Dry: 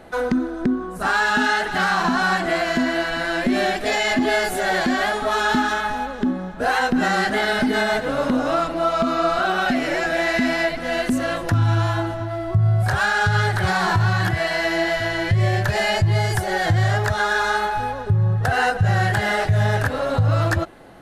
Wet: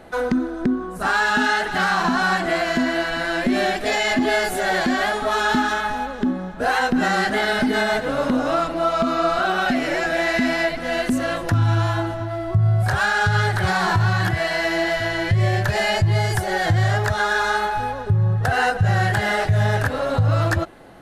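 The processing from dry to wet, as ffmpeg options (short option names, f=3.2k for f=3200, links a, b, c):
-filter_complex "[0:a]asettb=1/sr,asplit=3[a][b][c];[a]atrim=end=14.364[d];[b]atrim=start=14.36:end=14.98,asetpts=PTS-STARTPTS,afade=t=in:d=0.004:c=qsin,afade=t=out:st=0.616:d=0.004:c=qsin,asoftclip=type=hard:threshold=-14.5dB[e];[c]atrim=start=14.976[f];[d][e]acrossfade=d=0.004:c1=hsin:c2=qsin[g];[g][f]acrossfade=d=0.004:c1=qsin:c2=hsin"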